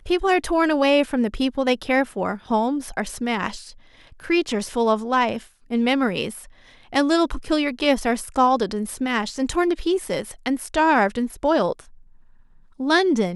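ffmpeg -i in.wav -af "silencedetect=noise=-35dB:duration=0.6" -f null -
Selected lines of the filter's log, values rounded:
silence_start: 11.81
silence_end: 12.80 | silence_duration: 0.98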